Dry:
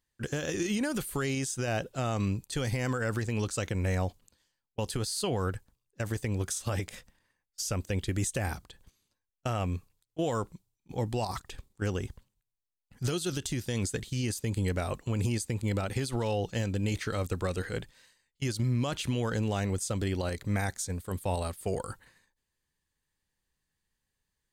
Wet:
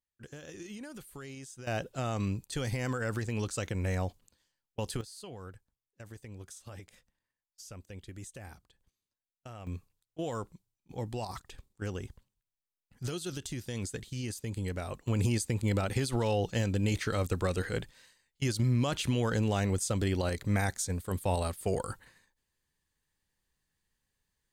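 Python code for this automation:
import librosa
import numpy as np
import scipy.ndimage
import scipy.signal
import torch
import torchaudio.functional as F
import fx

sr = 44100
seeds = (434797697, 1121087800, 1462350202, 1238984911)

y = fx.gain(x, sr, db=fx.steps((0.0, -14.0), (1.67, -2.5), (5.01, -15.0), (9.67, -5.5), (15.08, 1.0)))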